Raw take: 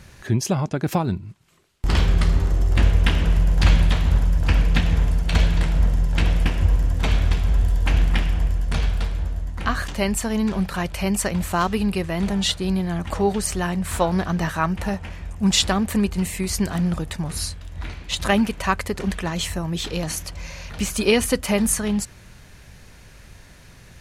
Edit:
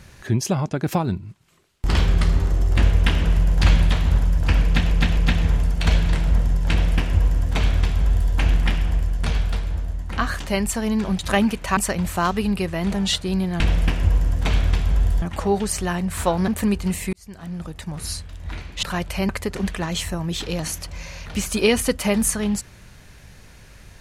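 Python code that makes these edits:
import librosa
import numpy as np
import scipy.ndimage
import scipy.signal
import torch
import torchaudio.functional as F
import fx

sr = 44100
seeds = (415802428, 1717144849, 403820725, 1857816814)

y = fx.edit(x, sr, fx.repeat(start_s=4.65, length_s=0.26, count=3),
    fx.duplicate(start_s=6.18, length_s=1.62, to_s=12.96),
    fx.swap(start_s=10.67, length_s=0.46, other_s=18.15, other_length_s=0.58),
    fx.cut(start_s=14.22, length_s=1.58),
    fx.fade_in_span(start_s=16.45, length_s=1.19), tone=tone)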